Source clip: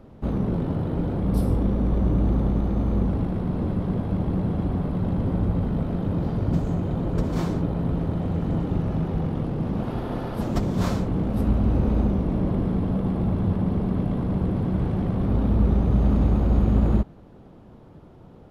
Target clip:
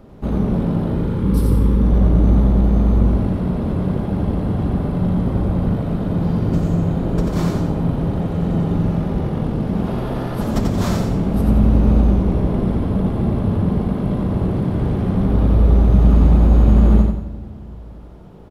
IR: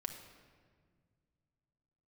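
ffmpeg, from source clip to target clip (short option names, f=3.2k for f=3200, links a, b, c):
-filter_complex "[0:a]asettb=1/sr,asplit=3[a][b][c];[a]atrim=end=0.974[d];[b]atrim=start=0.97:end=1.83,asetpts=PTS-STARTPTS,afade=t=in:d=0.004:c=qsin,afade=t=out:st=0.856:d=0.004:c=qsin,asuperstop=centerf=680:order=4:qfactor=2.3[e];[c]atrim=start=1.826[f];[d][e]acrossfade=d=0.004:c1=hsin:c2=qsin[g];[g][f]acrossfade=d=0.004:c1=qsin:c2=hsin,aecho=1:1:89|178|267|356|445:0.631|0.246|0.096|0.0374|0.0146,asplit=2[h][i];[1:a]atrim=start_sample=2205,highshelf=f=4.3k:g=9.5[j];[i][j]afir=irnorm=-1:irlink=0,volume=-3dB[k];[h][k]amix=inputs=2:normalize=0"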